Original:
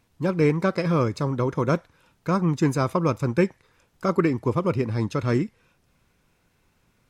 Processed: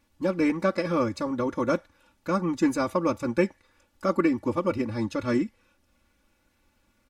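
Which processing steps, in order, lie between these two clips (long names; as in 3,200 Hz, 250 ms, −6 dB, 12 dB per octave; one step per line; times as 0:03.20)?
comb filter 3.5 ms, depth 96%
level −4.5 dB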